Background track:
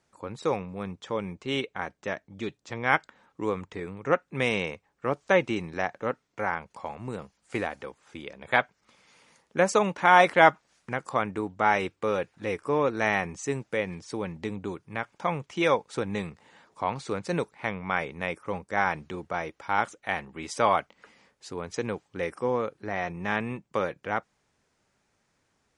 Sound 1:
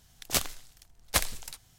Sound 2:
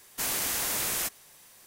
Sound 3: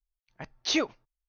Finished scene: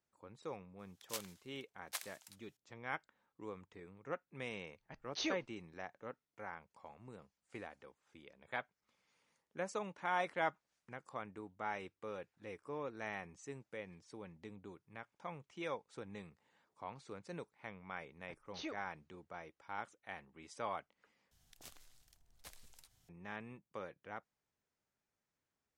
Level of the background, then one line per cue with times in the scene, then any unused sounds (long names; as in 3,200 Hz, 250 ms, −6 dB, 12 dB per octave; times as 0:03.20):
background track −18.5 dB
0:00.79: mix in 1 −16.5 dB + high-pass filter 820 Hz
0:04.50: mix in 3 −12.5 dB
0:17.89: mix in 3 −18 dB + high-shelf EQ 5,700 Hz −10.5 dB
0:21.31: overwrite with 1 −12 dB + downward compressor 2.5 to 1, threshold −47 dBFS
not used: 2